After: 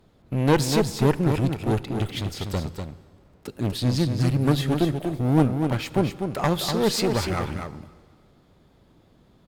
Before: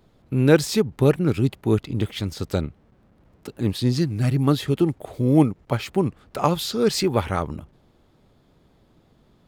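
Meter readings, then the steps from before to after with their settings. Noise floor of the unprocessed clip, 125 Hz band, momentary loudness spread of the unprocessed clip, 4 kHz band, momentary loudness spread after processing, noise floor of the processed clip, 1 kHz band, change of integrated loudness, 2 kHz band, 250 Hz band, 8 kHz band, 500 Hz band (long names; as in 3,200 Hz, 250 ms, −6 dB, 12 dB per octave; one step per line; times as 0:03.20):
−59 dBFS, −1.0 dB, 10 LU, +0.5 dB, 12 LU, −58 dBFS, 0.0 dB, −1.5 dB, −0.5 dB, −2.0 dB, +0.5 dB, −3.0 dB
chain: asymmetric clip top −25 dBFS
single-tap delay 245 ms −6.5 dB
dense smooth reverb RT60 1.9 s, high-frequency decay 0.9×, DRR 16.5 dB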